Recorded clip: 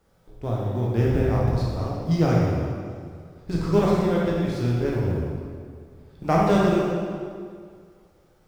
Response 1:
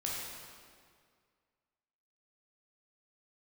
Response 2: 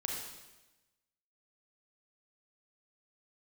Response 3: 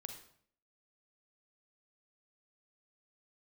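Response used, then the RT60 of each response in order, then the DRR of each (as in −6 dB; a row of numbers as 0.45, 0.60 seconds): 1; 2.0, 1.1, 0.60 seconds; −5.0, −1.0, 4.5 decibels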